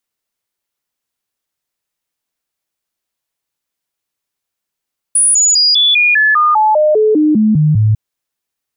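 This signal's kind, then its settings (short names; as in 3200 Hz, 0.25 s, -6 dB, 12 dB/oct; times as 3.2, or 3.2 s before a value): stepped sine 9750 Hz down, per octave 2, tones 14, 0.20 s, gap 0.00 s -7 dBFS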